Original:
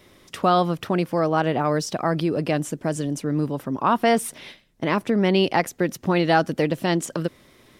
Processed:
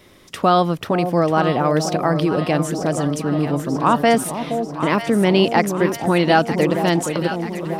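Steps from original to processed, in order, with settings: echo with dull and thin repeats by turns 0.47 s, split 810 Hz, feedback 75%, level -7 dB; gain +3.5 dB

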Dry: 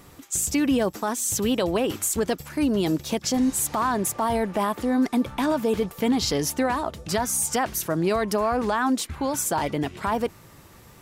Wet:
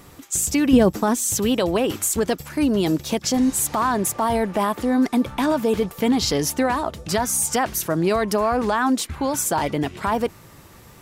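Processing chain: 0.73–1.18 low shelf 370 Hz +10.5 dB; gain +3 dB

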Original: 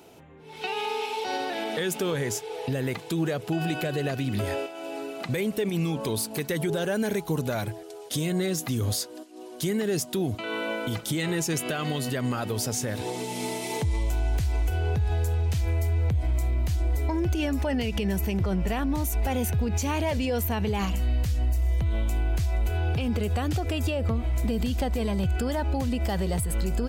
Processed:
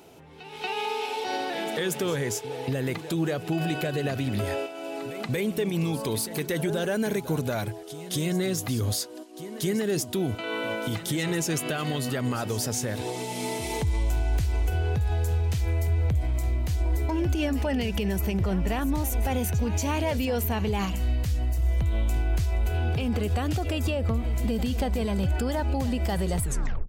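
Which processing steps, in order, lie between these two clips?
tape stop at the end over 0.45 s; pre-echo 0.234 s -14 dB

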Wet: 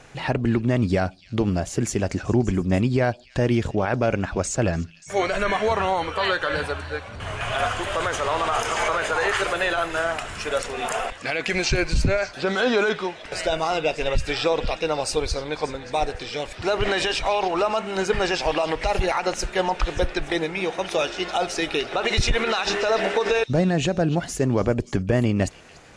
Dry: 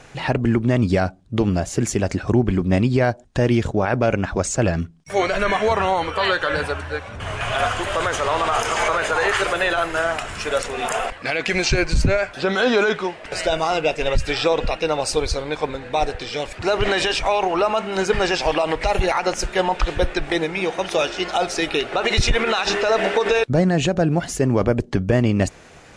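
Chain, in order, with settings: delay with a stepping band-pass 0.291 s, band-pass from 3700 Hz, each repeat 0.7 oct, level -12 dB; gain -3 dB

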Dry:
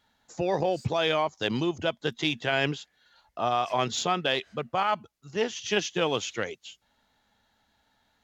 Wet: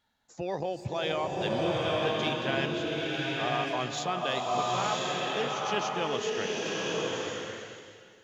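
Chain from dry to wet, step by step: bloom reverb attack 1.04 s, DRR -3.5 dB; gain -6.5 dB

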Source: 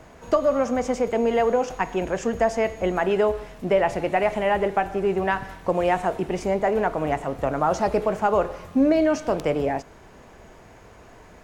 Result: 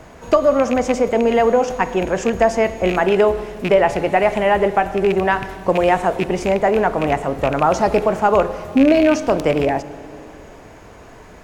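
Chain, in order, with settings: rattling part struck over -28 dBFS, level -20 dBFS; on a send: bell 250 Hz +8.5 dB 2.9 oct + reverb RT60 3.3 s, pre-delay 37 ms, DRR 17.5 dB; on the sum: gain +6 dB

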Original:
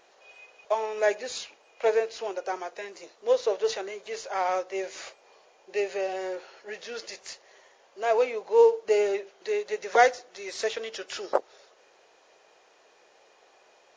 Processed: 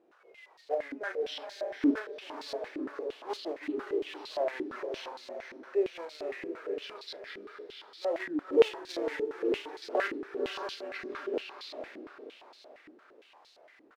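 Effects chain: repeated pitch sweeps -8 st, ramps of 0.952 s; in parallel at -1.5 dB: compressor 6:1, threshold -38 dBFS, peak gain reduction 20 dB; on the sum: companded quantiser 4-bit; doubler 35 ms -9 dB; diffused feedback echo 0.53 s, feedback 41%, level -3 dB; stepped band-pass 8.7 Hz 300–4200 Hz

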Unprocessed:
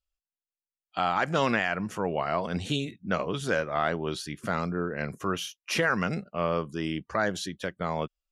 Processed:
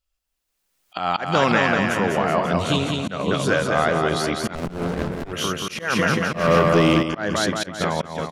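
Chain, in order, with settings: recorder AGC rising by 25 dB/s; on a send: bouncing-ball echo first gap 0.2 s, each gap 0.9×, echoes 5; 6.33–7.03 on the sum: sample leveller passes 2; auto swell 0.179 s; 4.55–5.33 running maximum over 33 samples; gain +6 dB

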